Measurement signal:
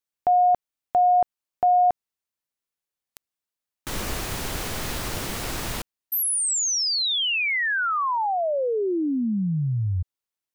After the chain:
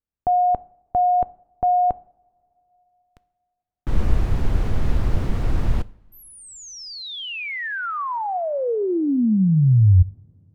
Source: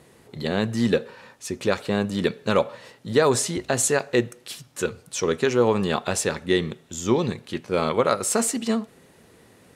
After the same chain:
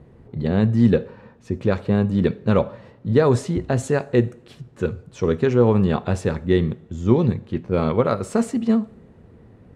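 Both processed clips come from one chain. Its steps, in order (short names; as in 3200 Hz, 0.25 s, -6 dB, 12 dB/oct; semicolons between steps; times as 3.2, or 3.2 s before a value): RIAA curve playback; two-slope reverb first 0.55 s, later 3.4 s, from -21 dB, DRR 17.5 dB; mismatched tape noise reduction decoder only; gain -1.5 dB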